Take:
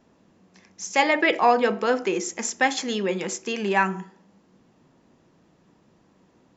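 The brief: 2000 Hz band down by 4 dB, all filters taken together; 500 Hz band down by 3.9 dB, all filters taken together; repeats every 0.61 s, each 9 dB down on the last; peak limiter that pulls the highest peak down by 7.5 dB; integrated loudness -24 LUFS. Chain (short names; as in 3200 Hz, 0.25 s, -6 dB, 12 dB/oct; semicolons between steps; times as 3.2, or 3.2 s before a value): bell 500 Hz -4.5 dB; bell 2000 Hz -4.5 dB; limiter -16 dBFS; feedback echo 0.61 s, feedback 35%, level -9 dB; gain +4 dB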